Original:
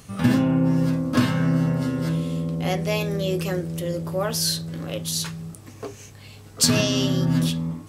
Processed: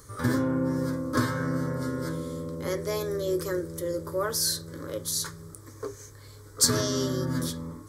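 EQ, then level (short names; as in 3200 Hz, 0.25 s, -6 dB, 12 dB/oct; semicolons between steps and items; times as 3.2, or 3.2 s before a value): fixed phaser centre 730 Hz, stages 6; 0.0 dB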